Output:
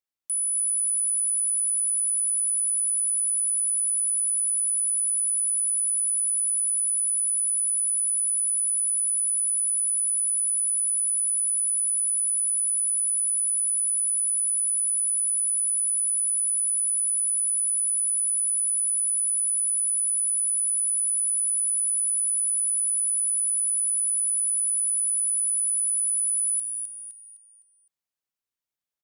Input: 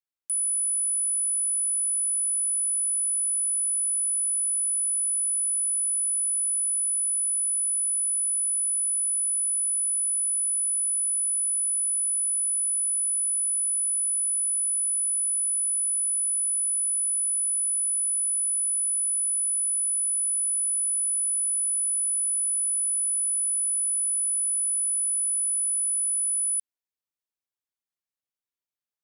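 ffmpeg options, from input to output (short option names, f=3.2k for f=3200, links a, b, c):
-filter_complex "[0:a]asplit=6[a][b][c][d][e][f];[b]adelay=256,afreqshift=-110,volume=-6dB[g];[c]adelay=512,afreqshift=-220,volume=-14dB[h];[d]adelay=768,afreqshift=-330,volume=-21.9dB[i];[e]adelay=1024,afreqshift=-440,volume=-29.9dB[j];[f]adelay=1280,afreqshift=-550,volume=-37.8dB[k];[a][g][h][i][j][k]amix=inputs=6:normalize=0"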